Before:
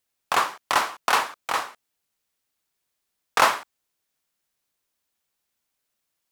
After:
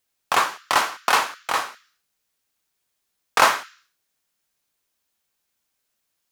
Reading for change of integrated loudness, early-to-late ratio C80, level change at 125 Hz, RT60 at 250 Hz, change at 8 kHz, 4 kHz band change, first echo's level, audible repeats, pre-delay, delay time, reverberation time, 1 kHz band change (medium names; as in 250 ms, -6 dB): +2.5 dB, 21.0 dB, no reading, 0.55 s, +3.5 dB, +3.0 dB, no echo, no echo, 3 ms, no echo, 0.55 s, +2.0 dB